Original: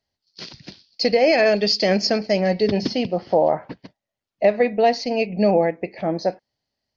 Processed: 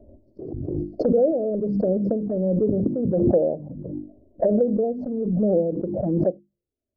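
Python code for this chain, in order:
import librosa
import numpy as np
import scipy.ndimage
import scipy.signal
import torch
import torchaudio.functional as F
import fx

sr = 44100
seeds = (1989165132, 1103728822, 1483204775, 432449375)

y = scipy.signal.sosfilt(scipy.signal.ellip(4, 1.0, 60, 560.0, 'lowpass', fs=sr, output='sos'), x)
y = fx.hpss(y, sr, part='harmonic', gain_db=-5)
y = fx.hum_notches(y, sr, base_hz=50, count=7)
y = fx.env_flanger(y, sr, rest_ms=3.2, full_db=-21.0)
y = fx.pre_swell(y, sr, db_per_s=26.0)
y = F.gain(torch.from_numpy(y), 3.5).numpy()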